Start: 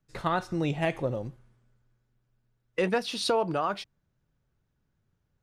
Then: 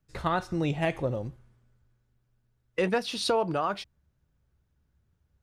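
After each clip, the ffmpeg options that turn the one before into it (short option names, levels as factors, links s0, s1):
-af "equalizer=f=68:t=o:w=0.51:g=14.5"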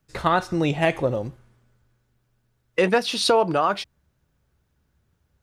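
-af "lowshelf=f=160:g=-7.5,volume=2.51"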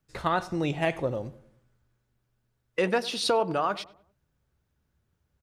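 -filter_complex "[0:a]asplit=2[s0][s1];[s1]adelay=98,lowpass=f=1200:p=1,volume=0.141,asplit=2[s2][s3];[s3]adelay=98,lowpass=f=1200:p=1,volume=0.46,asplit=2[s4][s5];[s5]adelay=98,lowpass=f=1200:p=1,volume=0.46,asplit=2[s6][s7];[s7]adelay=98,lowpass=f=1200:p=1,volume=0.46[s8];[s0][s2][s4][s6][s8]amix=inputs=5:normalize=0,volume=0.501"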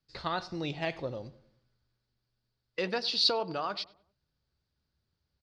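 -af "lowpass=f=4600:t=q:w=6.2,volume=0.422"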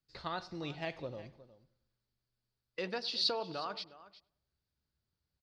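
-af "aecho=1:1:361:0.141,volume=0.501"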